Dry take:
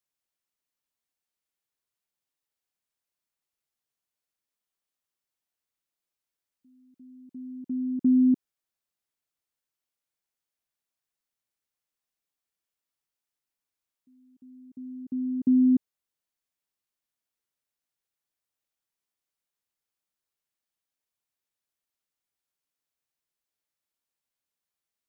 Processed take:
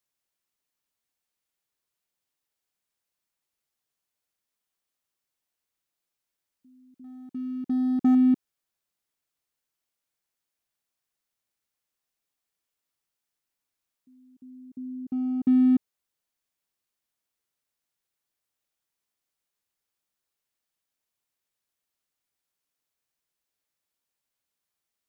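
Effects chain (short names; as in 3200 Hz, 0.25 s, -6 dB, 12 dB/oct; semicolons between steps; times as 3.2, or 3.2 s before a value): 7.04–8.15 sample leveller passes 1; in parallel at -7 dB: overloaded stage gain 33.5 dB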